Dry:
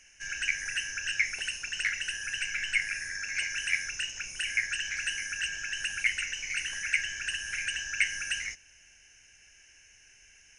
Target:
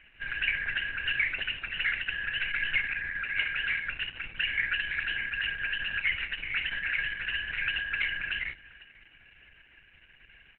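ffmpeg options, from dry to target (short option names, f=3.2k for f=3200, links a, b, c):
-af "aemphasis=mode=reproduction:type=75fm,bandreject=f=49.6:t=h:w=4,bandreject=f=99.2:t=h:w=4,bandreject=f=148.8:t=h:w=4,bandreject=f=198.4:t=h:w=4,bandreject=f=248:t=h:w=4,bandreject=f=297.6:t=h:w=4,bandreject=f=347.2:t=h:w=4,bandreject=f=396.8:t=h:w=4,bandreject=f=446.4:t=h:w=4,bandreject=f=496:t=h:w=4,bandreject=f=545.6:t=h:w=4,bandreject=f=595.2:t=h:w=4,bandreject=f=644.8:t=h:w=4,bandreject=f=694.4:t=h:w=4,bandreject=f=744:t=h:w=4,bandreject=f=793.6:t=h:w=4,asoftclip=type=tanh:threshold=-26dB,aecho=1:1:500|1000:0.075|0.0232,volume=8.5dB" -ar 48000 -c:a libopus -b:a 8k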